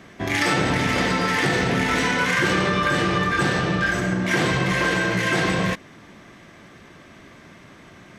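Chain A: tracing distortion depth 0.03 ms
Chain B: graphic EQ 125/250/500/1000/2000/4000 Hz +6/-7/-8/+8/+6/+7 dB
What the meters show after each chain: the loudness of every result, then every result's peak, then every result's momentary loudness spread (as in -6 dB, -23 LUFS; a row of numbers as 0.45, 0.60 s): -21.0, -15.0 LUFS; -8.0, -1.5 dBFS; 2, 4 LU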